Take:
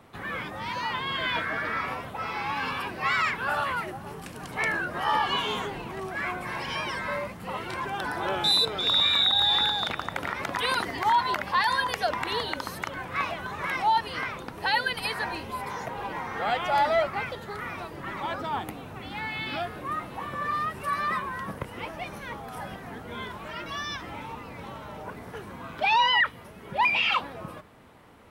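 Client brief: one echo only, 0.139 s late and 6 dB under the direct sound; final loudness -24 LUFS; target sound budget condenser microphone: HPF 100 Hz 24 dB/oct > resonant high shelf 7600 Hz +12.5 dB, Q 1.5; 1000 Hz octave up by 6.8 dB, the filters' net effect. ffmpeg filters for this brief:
-af "highpass=f=100:w=0.5412,highpass=f=100:w=1.3066,equalizer=f=1k:t=o:g=8,highshelf=f=7.6k:t=q:w=1.5:g=12.5,aecho=1:1:139:0.501,volume=-1dB"

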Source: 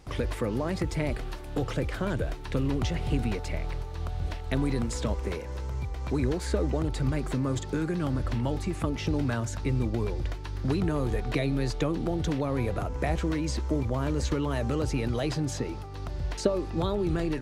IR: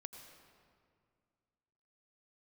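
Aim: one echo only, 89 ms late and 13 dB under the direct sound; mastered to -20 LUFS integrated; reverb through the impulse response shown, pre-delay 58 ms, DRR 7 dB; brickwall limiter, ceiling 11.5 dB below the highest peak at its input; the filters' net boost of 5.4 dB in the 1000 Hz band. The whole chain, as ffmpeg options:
-filter_complex "[0:a]equalizer=f=1k:t=o:g=7,alimiter=limit=-20dB:level=0:latency=1,aecho=1:1:89:0.224,asplit=2[a][b];[1:a]atrim=start_sample=2205,adelay=58[c];[b][c]afir=irnorm=-1:irlink=0,volume=-2dB[d];[a][d]amix=inputs=2:normalize=0,volume=10dB"

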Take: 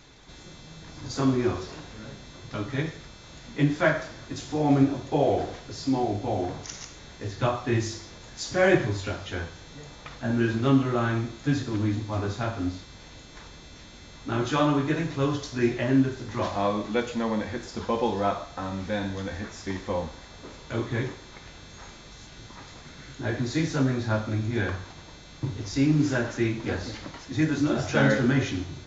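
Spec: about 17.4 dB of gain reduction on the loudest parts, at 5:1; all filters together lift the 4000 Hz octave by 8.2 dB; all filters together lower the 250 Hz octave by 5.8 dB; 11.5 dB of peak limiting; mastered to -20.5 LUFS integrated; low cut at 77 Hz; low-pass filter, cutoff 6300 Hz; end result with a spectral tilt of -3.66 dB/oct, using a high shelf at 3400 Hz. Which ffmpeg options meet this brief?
-af "highpass=77,lowpass=6.3k,equalizer=f=250:t=o:g=-7.5,highshelf=f=3.4k:g=5.5,equalizer=f=4k:t=o:g=7,acompressor=threshold=-37dB:ratio=5,volume=22dB,alimiter=limit=-12dB:level=0:latency=1"

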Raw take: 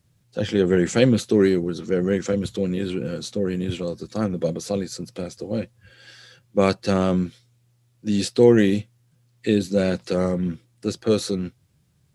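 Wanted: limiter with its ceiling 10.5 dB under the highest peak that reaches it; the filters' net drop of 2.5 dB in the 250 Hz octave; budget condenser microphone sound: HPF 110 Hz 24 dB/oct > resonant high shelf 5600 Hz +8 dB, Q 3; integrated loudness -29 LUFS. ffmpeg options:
-af "equalizer=f=250:t=o:g=-3.5,alimiter=limit=-14dB:level=0:latency=1,highpass=f=110:w=0.5412,highpass=f=110:w=1.3066,highshelf=f=5.6k:t=q:w=3:g=8,volume=-3dB"

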